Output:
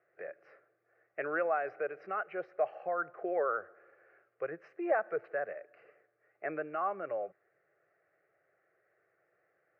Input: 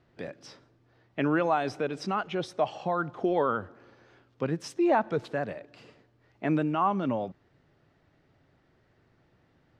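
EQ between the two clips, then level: high-pass 430 Hz 12 dB/octave; low-pass 2.4 kHz 24 dB/octave; static phaser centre 940 Hz, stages 6; -1.5 dB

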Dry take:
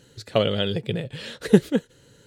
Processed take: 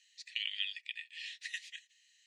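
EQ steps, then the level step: rippled Chebyshev high-pass 1.8 kHz, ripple 6 dB; distance through air 100 m; 0.0 dB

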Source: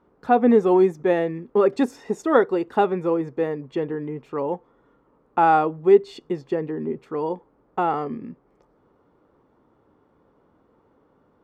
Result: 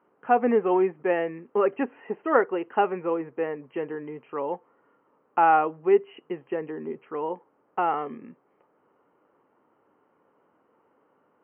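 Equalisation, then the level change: high-pass 130 Hz 12 dB/octave; brick-wall FIR low-pass 3.2 kHz; bass shelf 350 Hz -12 dB; 0.0 dB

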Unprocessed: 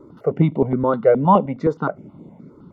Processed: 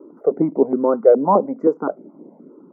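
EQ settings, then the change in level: high-pass 280 Hz 24 dB/octave; Butterworth band-stop 3.4 kHz, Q 0.64; tilt shelf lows +9.5 dB, about 1.1 kHz; -3.0 dB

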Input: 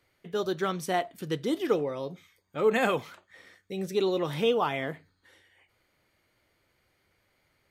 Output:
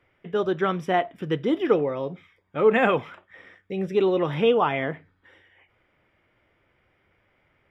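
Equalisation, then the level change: Savitzky-Golay filter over 25 samples; +5.5 dB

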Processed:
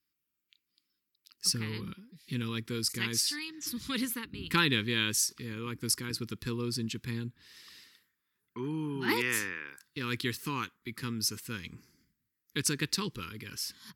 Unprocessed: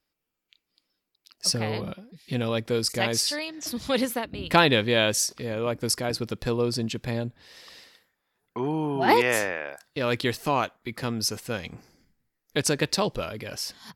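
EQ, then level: high-pass 53 Hz; Butterworth band-stop 650 Hz, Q 0.87; treble shelf 12 kHz +10 dB; -5.5 dB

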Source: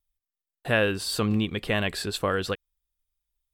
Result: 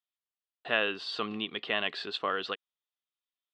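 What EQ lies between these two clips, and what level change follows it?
cabinet simulation 310–3300 Hz, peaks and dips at 340 Hz -3 dB, 530 Hz -7 dB, 880 Hz -4 dB, 1.6 kHz -6 dB, 2.3 kHz -8 dB; tilt EQ +2.5 dB/octave; 0.0 dB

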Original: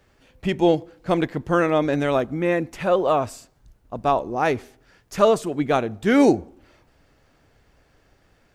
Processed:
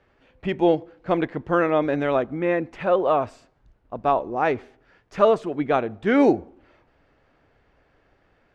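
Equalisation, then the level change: distance through air 63 m; tone controls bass -5 dB, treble -12 dB; 0.0 dB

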